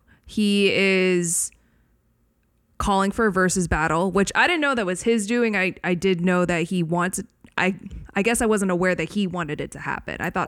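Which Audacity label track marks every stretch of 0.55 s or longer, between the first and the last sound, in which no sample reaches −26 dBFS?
1.470000	2.800000	silence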